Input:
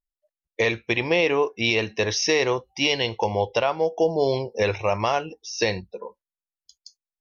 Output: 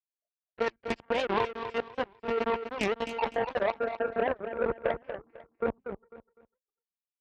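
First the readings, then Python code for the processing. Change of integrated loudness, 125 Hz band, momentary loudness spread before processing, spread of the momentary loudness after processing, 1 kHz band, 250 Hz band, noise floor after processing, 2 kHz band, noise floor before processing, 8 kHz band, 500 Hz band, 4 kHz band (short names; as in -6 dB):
-8.5 dB, -16.0 dB, 8 LU, 7 LU, -5.0 dB, -8.5 dB, under -85 dBFS, -10.5 dB, under -85 dBFS, n/a, -7.5 dB, -16.5 dB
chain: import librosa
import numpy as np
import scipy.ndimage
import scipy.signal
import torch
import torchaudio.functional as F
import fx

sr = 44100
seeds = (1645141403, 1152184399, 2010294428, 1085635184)

y = fx.filter_sweep_lowpass(x, sr, from_hz=1100.0, to_hz=430.0, start_s=2.94, end_s=5.17, q=1.7)
y = fx.dereverb_blind(y, sr, rt60_s=1.5)
y = fx.high_shelf(y, sr, hz=2700.0, db=4.0)
y = fx.level_steps(y, sr, step_db=13)
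y = fx.lpc_monotone(y, sr, seeds[0], pitch_hz=230.0, order=16)
y = fx.cheby_harmonics(y, sr, harmonics=(3, 5, 7, 8), levels_db=(-43, -30, -15, -38), full_scale_db=-14.5)
y = scipy.signal.sosfilt(scipy.signal.butter(2, 40.0, 'highpass', fs=sr, output='sos'), y)
y = fx.echo_feedback(y, sr, ms=249, feedback_pct=27, wet_db=-9.0)
y = fx.record_warp(y, sr, rpm=78.0, depth_cents=250.0)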